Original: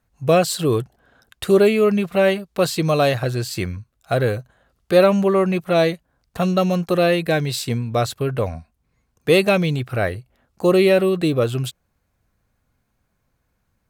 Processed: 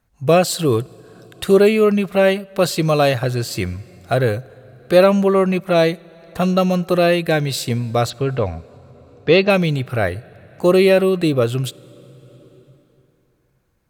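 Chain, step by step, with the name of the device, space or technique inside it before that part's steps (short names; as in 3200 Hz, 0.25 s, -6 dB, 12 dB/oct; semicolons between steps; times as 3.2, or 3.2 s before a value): 8.1–9.5 steep low-pass 5400 Hz 36 dB/oct; compressed reverb return (on a send at -11 dB: reverb RT60 2.6 s, pre-delay 24 ms + compressor 6:1, threshold -31 dBFS, peak gain reduction 19.5 dB); on the sum: gain +2 dB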